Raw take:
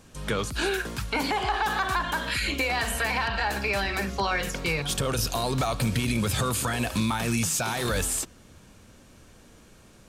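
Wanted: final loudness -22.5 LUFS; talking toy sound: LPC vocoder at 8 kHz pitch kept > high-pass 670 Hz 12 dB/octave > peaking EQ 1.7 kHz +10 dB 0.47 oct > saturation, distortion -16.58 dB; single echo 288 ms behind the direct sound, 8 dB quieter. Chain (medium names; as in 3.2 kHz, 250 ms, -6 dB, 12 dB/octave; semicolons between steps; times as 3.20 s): delay 288 ms -8 dB; LPC vocoder at 8 kHz pitch kept; high-pass 670 Hz 12 dB/octave; peaking EQ 1.7 kHz +10 dB 0.47 oct; saturation -17 dBFS; trim +4 dB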